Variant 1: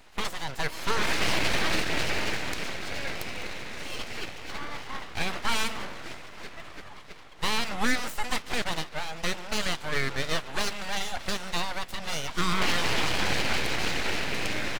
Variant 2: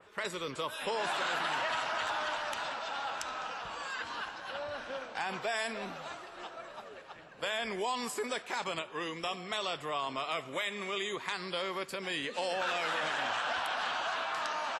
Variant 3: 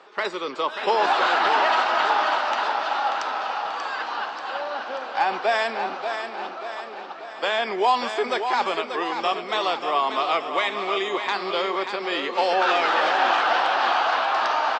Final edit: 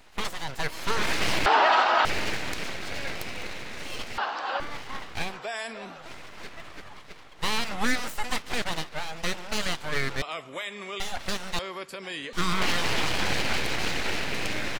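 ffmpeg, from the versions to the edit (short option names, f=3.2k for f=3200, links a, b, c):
-filter_complex "[2:a]asplit=2[a][b];[1:a]asplit=3[c][d][e];[0:a]asplit=6[f][g][h][i][j][k];[f]atrim=end=1.462[l];[a]atrim=start=1.458:end=2.052[m];[g]atrim=start=2.048:end=4.182[n];[b]atrim=start=4.178:end=4.602[o];[h]atrim=start=4.598:end=5.41[p];[c]atrim=start=5.17:end=6.19[q];[i]atrim=start=5.95:end=10.222[r];[d]atrim=start=10.218:end=11.002[s];[j]atrim=start=10.998:end=11.592[t];[e]atrim=start=11.588:end=12.332[u];[k]atrim=start=12.328[v];[l][m]acrossfade=d=0.004:c1=hsin:c2=hsin[w];[w][n]acrossfade=d=0.004:c1=hsin:c2=hsin[x];[x][o]acrossfade=d=0.004:c1=hsin:c2=hsin[y];[y][p]acrossfade=d=0.004:c1=hsin:c2=hsin[z];[z][q]acrossfade=d=0.24:c1=tri:c2=tri[aa];[aa][r]acrossfade=d=0.24:c1=tri:c2=tri[ab];[ab][s]acrossfade=d=0.004:c1=hsin:c2=hsin[ac];[ac][t]acrossfade=d=0.004:c1=hsin:c2=hsin[ad];[ad][u]acrossfade=d=0.004:c1=hsin:c2=hsin[ae];[ae][v]acrossfade=d=0.004:c1=hsin:c2=hsin"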